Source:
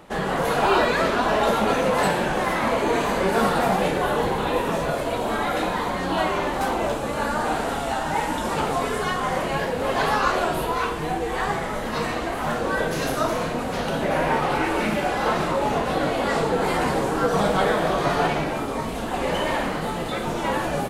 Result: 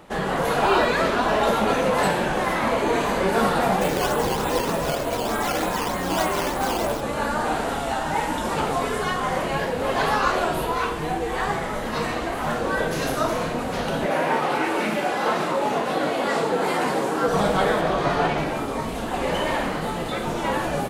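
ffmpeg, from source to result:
ffmpeg -i in.wav -filter_complex "[0:a]asplit=3[link_01][link_02][link_03];[link_01]afade=type=out:start_time=3.8:duration=0.02[link_04];[link_02]acrusher=samples=8:mix=1:aa=0.000001:lfo=1:lforange=8:lforate=3.3,afade=type=in:start_time=3.8:duration=0.02,afade=type=out:start_time=7:duration=0.02[link_05];[link_03]afade=type=in:start_time=7:duration=0.02[link_06];[link_04][link_05][link_06]amix=inputs=3:normalize=0,asettb=1/sr,asplit=3[link_07][link_08][link_09];[link_07]atrim=end=14.064[link_10];[link_08]atrim=start=14.06:end=17.28,asetpts=PTS-STARTPTS,afade=type=in:duration=0.004:curve=qsin,afade=type=out:start_time=3.216:duration=0.004:curve=qsin,highpass=190[link_11];[link_09]atrim=start=17.276[link_12];[link_10][link_11]acrossfade=duration=0.004:curve1=hsin:curve2=qsin[link_13];[link_13][link_12]acrossfade=duration=0.004:curve1=qsin:curve2=hsin,asettb=1/sr,asplit=3[link_14][link_15][link_16];[link_14]atrim=end=17.814[link_17];[link_15]atrim=start=17.81:end=18.38,asetpts=PTS-STARTPTS,afade=type=in:duration=0.004:curve=qsin,afade=type=out:start_time=0.566:duration=0.004:curve=qsin,highshelf=frequency=8200:gain=-9.5[link_18];[link_16]atrim=start=18.376[link_19];[link_17][link_18]acrossfade=duration=0.004:curve1=hsin:curve2=qsin[link_20];[link_20][link_19]acrossfade=duration=0.004:curve1=qsin:curve2=hsin" out.wav

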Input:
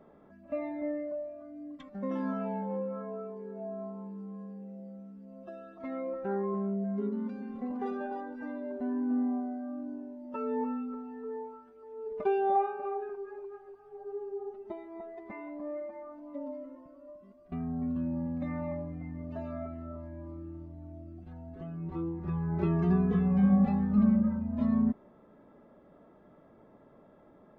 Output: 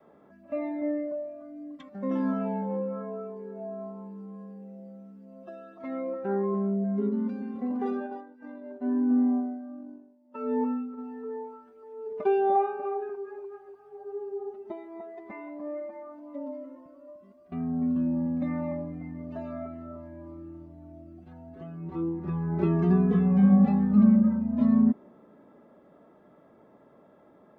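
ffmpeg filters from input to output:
ffmpeg -i in.wav -filter_complex "[0:a]asplit=3[link_01][link_02][link_03];[link_01]afade=type=out:start_time=7.99:duration=0.02[link_04];[link_02]agate=range=-33dB:threshold=-33dB:ratio=3:release=100:detection=peak,afade=type=in:start_time=7.99:duration=0.02,afade=type=out:start_time=10.97:duration=0.02[link_05];[link_03]afade=type=in:start_time=10.97:duration=0.02[link_06];[link_04][link_05][link_06]amix=inputs=3:normalize=0,highpass=frequency=160:poles=1,adynamicequalizer=threshold=0.00891:dfrequency=250:dqfactor=0.93:tfrequency=250:tqfactor=0.93:attack=5:release=100:ratio=0.375:range=3:mode=boostabove:tftype=bell,volume=2dB" out.wav

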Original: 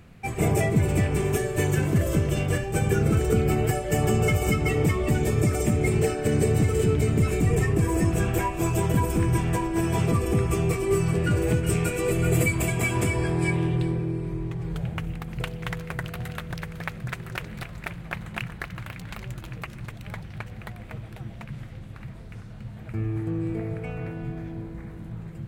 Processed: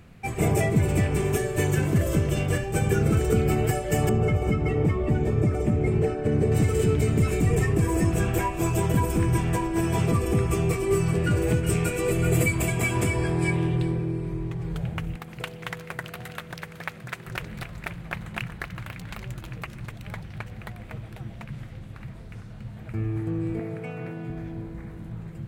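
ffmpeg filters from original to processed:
ffmpeg -i in.wav -filter_complex "[0:a]asettb=1/sr,asplit=3[link_01][link_02][link_03];[link_01]atrim=end=4.094[link_04];[link_02]atrim=start=4.09:end=6.52,asetpts=PTS-STARTPTS,afade=type=in:duration=0.004:curve=qsin,afade=type=out:start_time=2.426:duration=0.004:curve=qsin,lowpass=frequency=1100:poles=1[link_05];[link_03]atrim=start=6.516[link_06];[link_04][link_05]acrossfade=duration=0.004:curve1=hsin:curve2=qsin[link_07];[link_07][link_06]acrossfade=duration=0.004:curve1=qsin:curve2=hsin,asettb=1/sr,asplit=3[link_08][link_09][link_10];[link_08]atrim=end=15.164[link_11];[link_09]atrim=start=15.16:end=17.27,asetpts=PTS-STARTPTS,afade=type=in:duration=0.004:curve=qsin,afade=type=out:start_time=2.106:duration=0.004:curve=qsin,highpass=frequency=290:poles=1[link_12];[link_10]atrim=start=17.266[link_13];[link_11][link_12]acrossfade=duration=0.004:curve1=hsin:curve2=qsin[link_14];[link_14][link_13]acrossfade=duration=0.004:curve1=qsin:curve2=hsin,asettb=1/sr,asplit=3[link_15][link_16][link_17];[link_15]atrim=end=23.594[link_18];[link_16]atrim=start=23.59:end=24.3,asetpts=PTS-STARTPTS,afade=type=in:duration=0.004:curve=qsin,afade=type=out:start_time=0.706:duration=0.004:curve=qsin,highpass=frequency=130:width=0.5412,highpass=frequency=130:width=1.3066[link_19];[link_17]atrim=start=24.296[link_20];[link_18][link_19]acrossfade=duration=0.004:curve1=hsin:curve2=qsin[link_21];[link_21][link_20]acrossfade=duration=0.004:curve1=qsin:curve2=hsin" out.wav

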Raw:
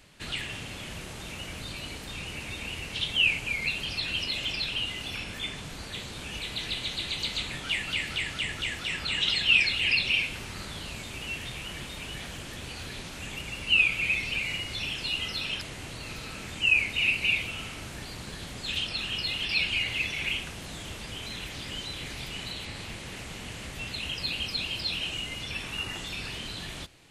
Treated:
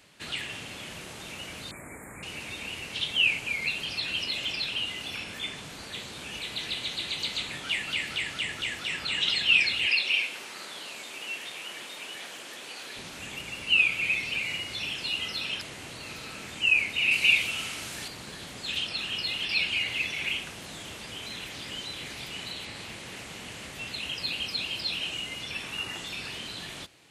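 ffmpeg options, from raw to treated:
ffmpeg -i in.wav -filter_complex "[0:a]asettb=1/sr,asplit=3[link_01][link_02][link_03];[link_01]atrim=end=1.714[link_04];[link_02]atrim=start=1.71:end=2.23,asetpts=PTS-STARTPTS,afade=type=in:duration=0.004:curve=qsin,afade=type=out:start_time=0.516:duration=0.004:curve=qsin,asuperstop=centerf=4100:order=20:qfactor=0.86[link_05];[link_03]atrim=start=2.226[link_06];[link_04][link_05]acrossfade=duration=0.004:curve1=hsin:curve2=qsin[link_07];[link_07][link_06]acrossfade=duration=0.004:curve1=qsin:curve2=hsin,asettb=1/sr,asplit=3[link_08][link_09][link_10];[link_08]atrim=end=9.864[link_11];[link_09]atrim=start=9.86:end=12.96,asetpts=PTS-STARTPTS,afade=type=in:duration=0.004:curve=qsin,afade=type=out:start_time=3.096:duration=0.004:curve=qsin,highpass=350[link_12];[link_10]atrim=start=12.956[link_13];[link_11][link_12]acrossfade=duration=0.004:curve1=hsin:curve2=qsin[link_14];[link_14][link_13]acrossfade=duration=0.004:curve1=qsin:curve2=hsin,asettb=1/sr,asplit=3[link_15][link_16][link_17];[link_15]atrim=end=17.114[link_18];[link_16]atrim=start=17.11:end=18.08,asetpts=PTS-STARTPTS,afade=type=in:duration=0.004:curve=qsin,afade=type=out:start_time=0.966:duration=0.004:curve=qsin,highshelf=frequency=2100:gain=8[link_19];[link_17]atrim=start=18.076[link_20];[link_18][link_19]acrossfade=duration=0.004:curve1=hsin:curve2=qsin[link_21];[link_21][link_20]acrossfade=duration=0.004:curve1=qsin:curve2=hsin,highpass=frequency=200:poles=1" out.wav

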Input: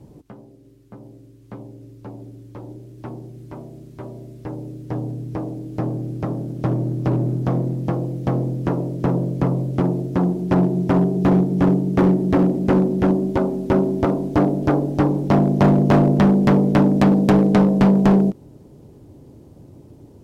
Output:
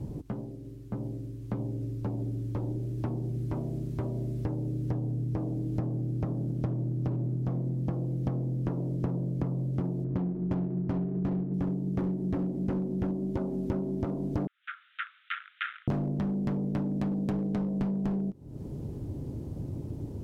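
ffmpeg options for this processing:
ffmpeg -i in.wav -filter_complex "[0:a]asettb=1/sr,asplit=3[link_01][link_02][link_03];[link_01]atrim=end=10.044[link_04];[link_02]atrim=start=10.04:end=11.54,asetpts=PTS-STARTPTS,afade=type=in:duration=0.004:curve=qsin,afade=type=out:start_time=1.496:duration=0.004:curve=qsin,adynamicsmooth=sensitivity=1.5:basefreq=740[link_05];[link_03]atrim=start=11.536[link_06];[link_04][link_05]acrossfade=duration=0.004:curve1=hsin:curve2=qsin[link_07];[link_07][link_06]acrossfade=duration=0.004:curve1=qsin:curve2=hsin,asettb=1/sr,asplit=3[link_08][link_09][link_10];[link_08]atrim=end=14.474[link_11];[link_09]atrim=start=14.47:end=15.88,asetpts=PTS-STARTPTS,afade=type=in:duration=0.004:curve=qsin,afade=type=out:start_time=1.406:duration=0.004:curve=qsin,asuperpass=centerf=2200:order=20:qfactor=0.93[link_12];[link_10]atrim=start=15.876[link_13];[link_11][link_12]acrossfade=duration=0.004:curve1=hsin:curve2=qsin[link_14];[link_14][link_13]acrossfade=duration=0.004:curve1=qsin:curve2=hsin,lowshelf=frequency=260:gain=11,acompressor=threshold=-28dB:ratio=12" out.wav

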